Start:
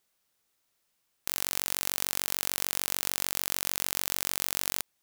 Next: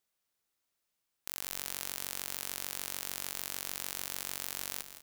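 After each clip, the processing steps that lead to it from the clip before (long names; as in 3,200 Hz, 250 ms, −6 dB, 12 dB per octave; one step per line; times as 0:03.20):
echo with shifted repeats 163 ms, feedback 54%, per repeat −30 Hz, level −11.5 dB
level −8 dB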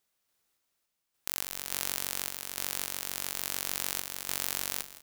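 sample-and-hold tremolo
level +6.5 dB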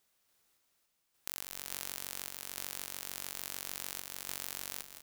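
downward compressor 3 to 1, threshold −40 dBFS, peak gain reduction 12 dB
level +3.5 dB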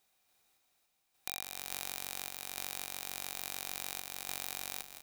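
hollow resonant body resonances 760/2,400/3,800 Hz, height 10 dB, ringing for 30 ms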